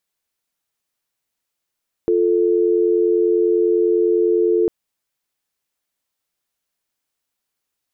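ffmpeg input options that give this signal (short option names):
-f lavfi -i "aevalsrc='0.158*(sin(2*PI*350*t)+sin(2*PI*440*t))':d=2.6:s=44100"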